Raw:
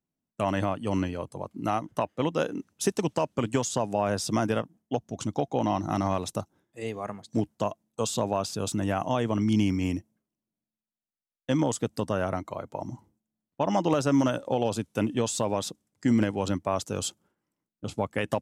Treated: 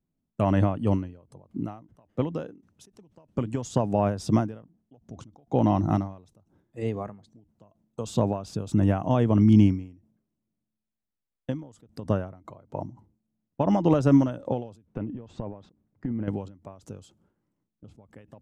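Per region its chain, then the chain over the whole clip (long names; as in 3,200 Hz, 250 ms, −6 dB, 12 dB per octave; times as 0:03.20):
0:14.85–0:16.28: low-pass filter 2,000 Hz + downward compressor 16 to 1, threshold −32 dBFS
whole clip: spectral tilt −3 dB per octave; every ending faded ahead of time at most 120 dB per second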